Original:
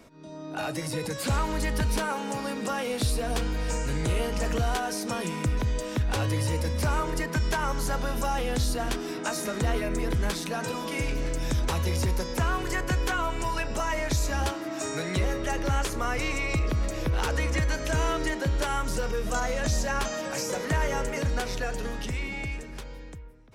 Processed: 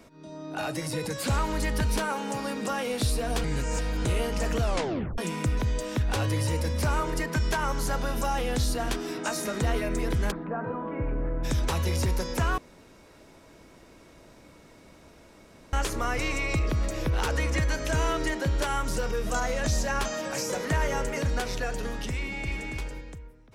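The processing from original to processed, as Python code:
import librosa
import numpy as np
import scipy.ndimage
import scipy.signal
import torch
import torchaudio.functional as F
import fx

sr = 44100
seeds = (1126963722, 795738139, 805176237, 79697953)

y = fx.lowpass(x, sr, hz=1500.0, slope=24, at=(10.3, 11.43), fade=0.02)
y = fx.echo_throw(y, sr, start_s=22.18, length_s=0.54, ms=280, feedback_pct=10, wet_db=-3.0)
y = fx.edit(y, sr, fx.reverse_span(start_s=3.44, length_s=0.61),
    fx.tape_stop(start_s=4.61, length_s=0.57),
    fx.room_tone_fill(start_s=12.58, length_s=3.15), tone=tone)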